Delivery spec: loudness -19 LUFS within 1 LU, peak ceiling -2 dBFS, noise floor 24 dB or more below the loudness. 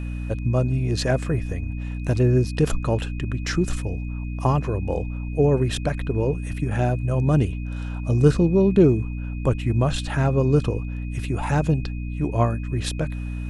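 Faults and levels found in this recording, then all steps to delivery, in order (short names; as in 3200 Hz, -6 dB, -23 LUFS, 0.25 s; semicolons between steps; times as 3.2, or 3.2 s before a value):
hum 60 Hz; harmonics up to 300 Hz; hum level -26 dBFS; steady tone 2500 Hz; tone level -45 dBFS; loudness -23.0 LUFS; peak -3.5 dBFS; loudness target -19.0 LUFS
-> de-hum 60 Hz, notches 5; notch 2500 Hz, Q 30; gain +4 dB; limiter -2 dBFS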